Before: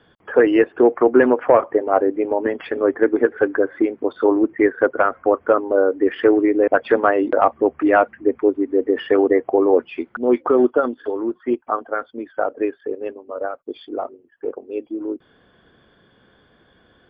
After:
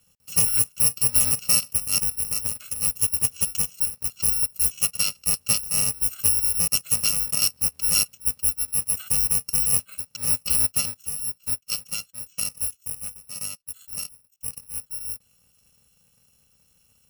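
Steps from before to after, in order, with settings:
samples in bit-reversed order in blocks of 128 samples
level −6.5 dB

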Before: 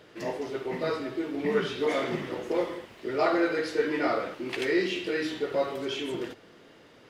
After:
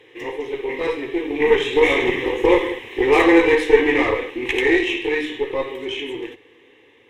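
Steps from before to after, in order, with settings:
source passing by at 0:02.87, 11 m/s, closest 12 metres
graphic EQ with 10 bands 125 Hz +5 dB, 250 Hz +4 dB, 500 Hz +8 dB, 2,000 Hz +9 dB, 4,000 Hz +12 dB
harmonic generator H 4 −22 dB, 8 −27 dB, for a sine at −6.5 dBFS
phaser with its sweep stopped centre 940 Hz, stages 8
level +7.5 dB

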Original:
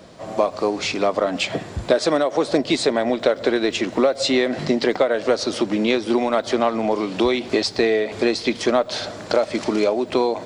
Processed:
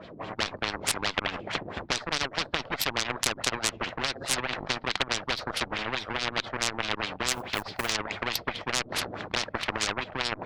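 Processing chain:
auto-filter low-pass sine 4.7 Hz 290–3,500 Hz
harmonic generator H 5 −23 dB, 7 −15 dB, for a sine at 0 dBFS
in parallel at −9 dB: soft clipping −19 dBFS, distortion −4 dB
0:07.30–0:07.93: on the sum: floating-point word with a short mantissa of 6 bits
every bin compressed towards the loudest bin 10 to 1
level −2 dB

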